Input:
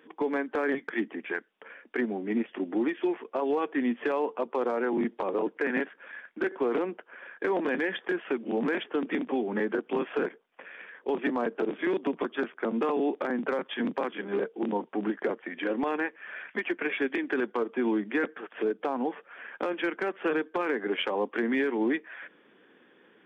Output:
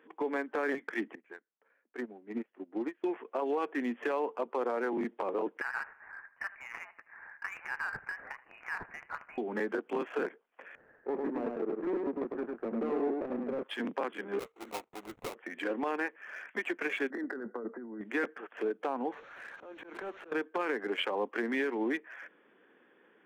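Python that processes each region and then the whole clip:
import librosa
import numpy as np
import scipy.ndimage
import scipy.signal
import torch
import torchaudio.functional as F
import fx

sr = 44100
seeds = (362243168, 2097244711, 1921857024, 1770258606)

y = fx.chain(x, sr, fx.dead_time(dead_ms=0.082),
    fx.air_absorb(metres=230.0),
    fx.upward_expand(threshold_db=-36.0, expansion=2.5), at=(1.15, 3.04))
y = fx.chain(y, sr, fx.highpass(hz=1100.0, slope=24),
    fx.echo_feedback(ms=78, feedback_pct=43, wet_db=-16.5),
    fx.freq_invert(carrier_hz=3300), at=(5.61, 9.38))
y = fx.chain(y, sr, fx.median_filter(points=41),
    fx.lowpass(hz=1600.0, slope=12),
    fx.echo_single(ms=102, db=-3.0), at=(10.75, 13.63))
y = fx.chain(y, sr, fx.highpass(hz=850.0, slope=6),
    fx.sample_hold(seeds[0], rate_hz=1700.0, jitter_pct=20),
    fx.upward_expand(threshold_db=-44.0, expansion=1.5), at=(14.39, 15.35))
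y = fx.chain(y, sr, fx.cheby_ripple(hz=2000.0, ripple_db=6),
    fx.peak_eq(hz=230.0, db=10.5, octaves=0.37),
    fx.over_compress(threshold_db=-34.0, ratio=-1.0), at=(17.1, 18.01))
y = fx.chain(y, sr, fx.delta_mod(bps=32000, step_db=-42.5),
    fx.auto_swell(attack_ms=423.0),
    fx.pre_swell(db_per_s=58.0), at=(19.12, 20.32))
y = fx.wiener(y, sr, points=9)
y = fx.low_shelf(y, sr, hz=240.0, db=-9.5)
y = F.gain(torch.from_numpy(y), -2.0).numpy()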